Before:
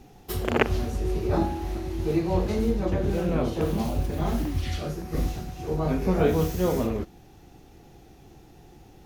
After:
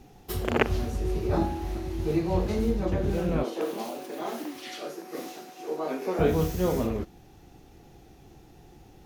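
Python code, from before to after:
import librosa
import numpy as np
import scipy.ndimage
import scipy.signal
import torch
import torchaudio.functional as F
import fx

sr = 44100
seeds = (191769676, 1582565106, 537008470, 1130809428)

y = fx.highpass(x, sr, hz=300.0, slope=24, at=(3.43, 6.19))
y = y * 10.0 ** (-1.5 / 20.0)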